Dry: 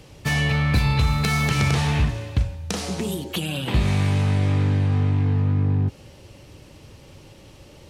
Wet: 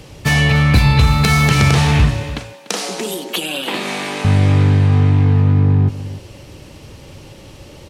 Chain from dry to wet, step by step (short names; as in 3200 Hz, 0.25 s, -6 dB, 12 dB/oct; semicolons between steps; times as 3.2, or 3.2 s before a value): 2.23–4.25 Bessel high-pass 360 Hz, order 8; on a send: echo 0.293 s -14.5 dB; on the sum: gain +8 dB